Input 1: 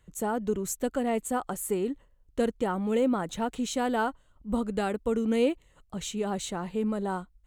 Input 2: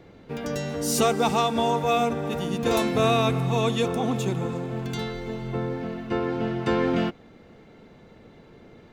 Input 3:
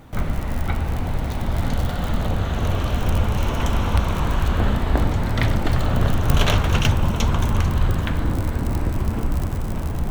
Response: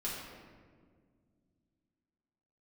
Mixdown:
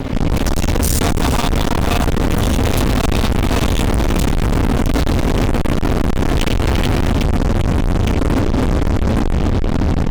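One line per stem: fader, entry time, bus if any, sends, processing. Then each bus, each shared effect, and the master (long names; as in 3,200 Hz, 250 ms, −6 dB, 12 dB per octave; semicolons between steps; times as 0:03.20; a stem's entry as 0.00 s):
muted
−7.5 dB, 0.00 s, no send, Butterworth high-pass 260 Hz 96 dB per octave; high-shelf EQ 5,500 Hz +10.5 dB; downward compressor, threshold −25 dBFS, peak gain reduction 8.5 dB
+2.0 dB, 0.00 s, no send, formant resonators in series i; low-shelf EQ 90 Hz +11.5 dB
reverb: not used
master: fuzz pedal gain 45 dB, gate −49 dBFS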